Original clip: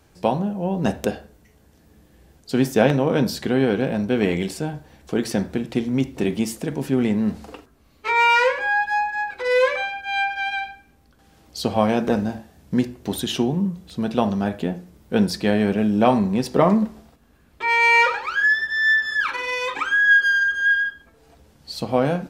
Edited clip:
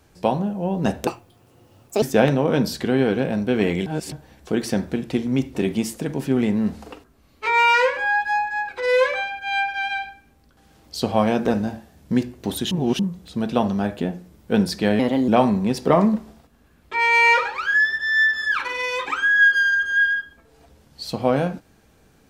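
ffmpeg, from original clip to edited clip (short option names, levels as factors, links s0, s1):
-filter_complex "[0:a]asplit=9[s0][s1][s2][s3][s4][s5][s6][s7][s8];[s0]atrim=end=1.074[s9];[s1]atrim=start=1.07:end=2.64,asetpts=PTS-STARTPTS,asetrate=72765,aresample=44100[s10];[s2]atrim=start=2.636:end=4.482[s11];[s3]atrim=start=4.478:end=4.742,asetpts=PTS-STARTPTS,areverse[s12];[s4]atrim=start=4.738:end=13.332[s13];[s5]atrim=start=13.328:end=13.612,asetpts=PTS-STARTPTS,areverse[s14];[s6]atrim=start=13.608:end=15.614[s15];[s7]atrim=start=15.61:end=15.97,asetpts=PTS-STARTPTS,asetrate=54684,aresample=44100,atrim=end_sample=12803,asetpts=PTS-STARTPTS[s16];[s8]atrim=start=15.966[s17];[s9][s10]acrossfade=d=0.004:c1=hsin:c2=hsin[s18];[s18][s11]acrossfade=d=0.004:c1=hsin:c2=hsin[s19];[s19][s12]acrossfade=d=0.004:c1=hsin:c2=hsin[s20];[s20][s13]acrossfade=d=0.004:c1=hsin:c2=hsin[s21];[s21][s14]acrossfade=d=0.004:c1=hsin:c2=hsin[s22];[s22][s15]acrossfade=d=0.004:c1=hsin:c2=hsin[s23];[s23][s16]acrossfade=d=0.004:c1=hsin:c2=hsin[s24];[s24][s17]acrossfade=d=0.004:c1=hsin:c2=hsin"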